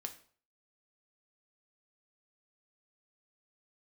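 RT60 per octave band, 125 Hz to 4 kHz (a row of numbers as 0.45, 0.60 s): 0.50, 0.45, 0.50, 0.50, 0.40, 0.40 s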